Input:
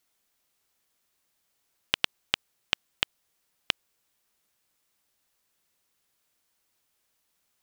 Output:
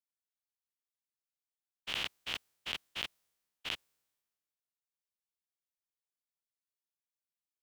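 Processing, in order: stepped spectrum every 0.1 s; three-band expander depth 70%; gain -3.5 dB

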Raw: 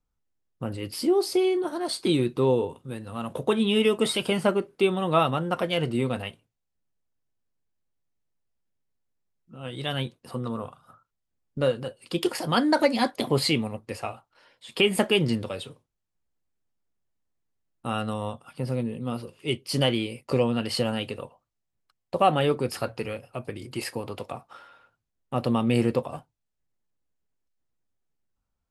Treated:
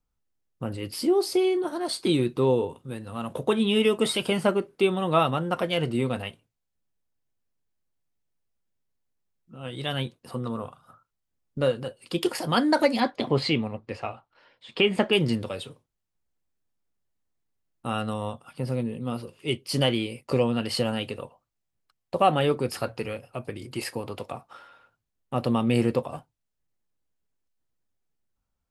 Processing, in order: 13–15.13 LPF 4100 Hz 12 dB/oct

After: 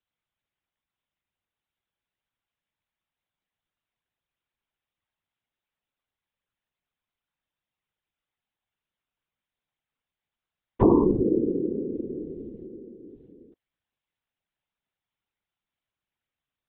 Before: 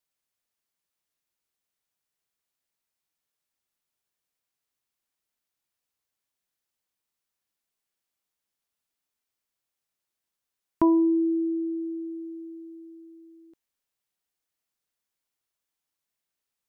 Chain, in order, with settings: LPC vocoder at 8 kHz whisper; whisperiser; gain +1.5 dB

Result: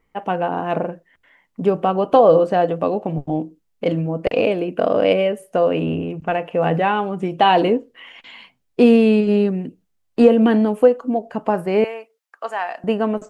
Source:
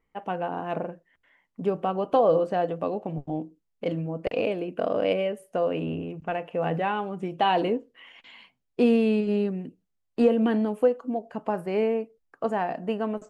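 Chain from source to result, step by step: 11.84–12.84 HPF 1000 Hz 12 dB/oct; gain +8.5 dB

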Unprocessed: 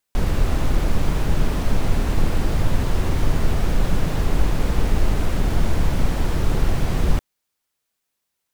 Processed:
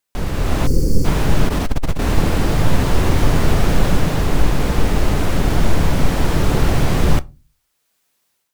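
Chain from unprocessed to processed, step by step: on a send at -16 dB: reverb RT60 0.30 s, pre-delay 7 ms; 0.67–1.05 on the sum: spectral gain 550–4300 Hz -23 dB; low shelf 72 Hz -6 dB; AGC gain up to 11.5 dB; 1.48–2.02 core saturation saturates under 54 Hz

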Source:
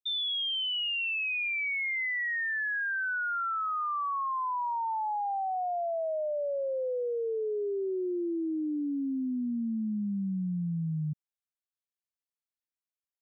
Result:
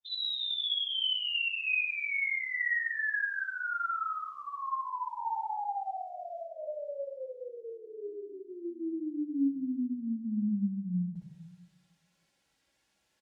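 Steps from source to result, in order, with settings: chorus voices 6, 0.51 Hz, delay 19 ms, depth 3.1 ms; reverse; upward compressor, threshold -50 dBFS; reverse; formant-preserving pitch shift +2 st; HPF 49 Hz; air absorption 68 m; notch 1200 Hz, Q 6.1; on a send: loudspeakers at several distances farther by 21 m 0 dB, 67 m -9 dB; on the sum: shoebox room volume 2700 m³, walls furnished, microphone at 2.3 m; gain -2 dB

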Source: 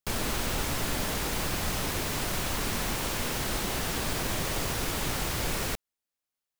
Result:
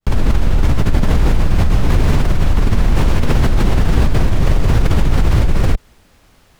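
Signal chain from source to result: opening faded in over 0.59 s; RIAA curve playback; in parallel at -0.5 dB: limiter -14 dBFS, peak gain reduction 9.5 dB; on the sum: fast leveller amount 100%; gain -3.5 dB

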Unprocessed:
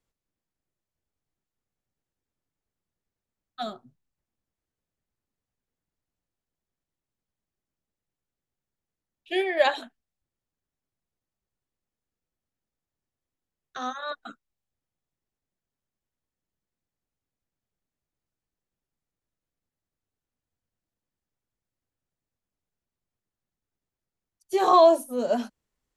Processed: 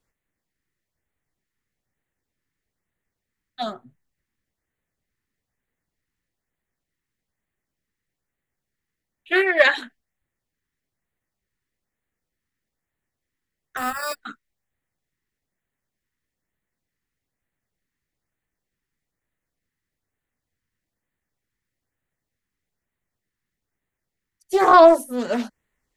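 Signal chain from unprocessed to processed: bell 1900 Hz +11 dB 0.54 oct; 13.77–14.21 sample-rate reducer 6300 Hz, jitter 0%; LFO notch sine 1.1 Hz 600–5500 Hz; Doppler distortion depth 0.2 ms; gain +5 dB

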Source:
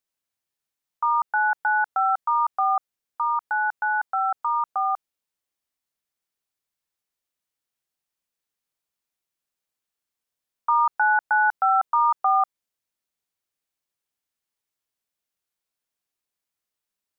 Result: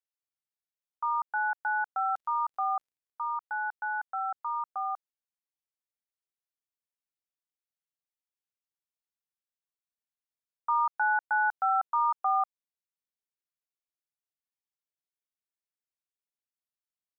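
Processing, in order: 2.08–3.21 crackle 84/s -> 25/s -53 dBFS; upward expander 1.5:1, over -36 dBFS; gain -6.5 dB

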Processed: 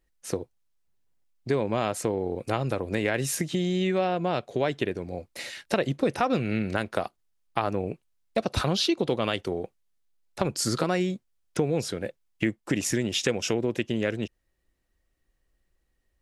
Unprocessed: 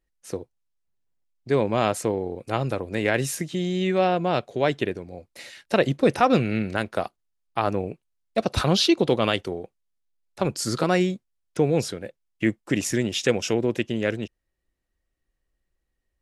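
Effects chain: compressor 3:1, threshold -29 dBFS, peak gain reduction 12 dB; gain +4.5 dB

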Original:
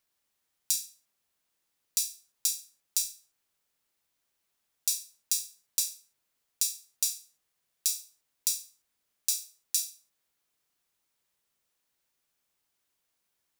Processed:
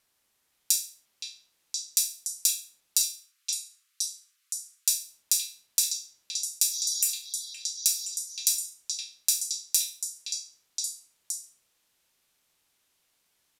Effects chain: 3.03–4.9 steep high-pass 1100 Hz 96 dB/oct; 6.74–7.06 spectral repair 3300–7000 Hz; in parallel at -1 dB: compressor, threshold -34 dBFS, peak gain reduction 11.5 dB; on the sum: delay with a stepping band-pass 0.519 s, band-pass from 3000 Hz, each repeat 0.7 oct, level -1.5 dB; downsampling 32000 Hz; gain +2 dB

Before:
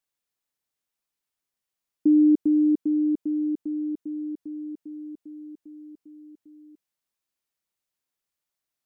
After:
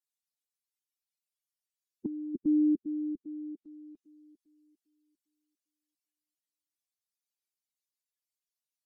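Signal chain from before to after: per-bin expansion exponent 3; negative-ratio compressor -24 dBFS, ratio -0.5; treble ducked by the level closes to 310 Hz, closed at -32.5 dBFS

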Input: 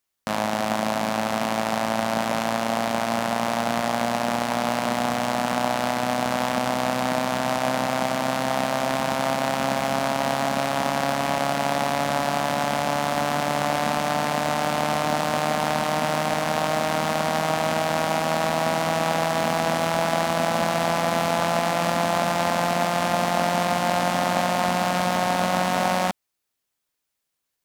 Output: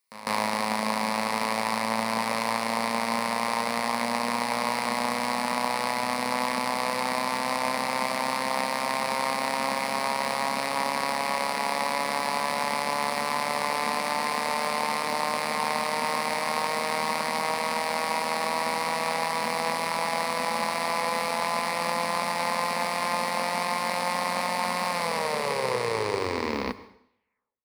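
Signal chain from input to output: tape stop at the end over 2.76 s; notches 50/100 Hz; on a send: reverse echo 0.152 s -16 dB; on the sum: vocal rider within 3 dB; low shelf 330 Hz -11.5 dB; modulation noise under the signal 31 dB; ripple EQ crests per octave 0.91, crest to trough 10 dB; plate-style reverb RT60 0.7 s, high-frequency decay 0.9×, pre-delay 90 ms, DRR 16 dB; gain -2.5 dB

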